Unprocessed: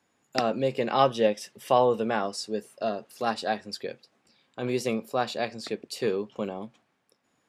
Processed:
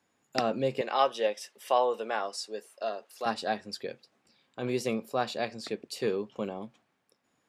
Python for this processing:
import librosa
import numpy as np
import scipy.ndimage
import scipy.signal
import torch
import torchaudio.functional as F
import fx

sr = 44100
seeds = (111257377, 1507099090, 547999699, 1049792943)

y = fx.highpass(x, sr, hz=490.0, slope=12, at=(0.81, 3.26))
y = y * 10.0 ** (-2.5 / 20.0)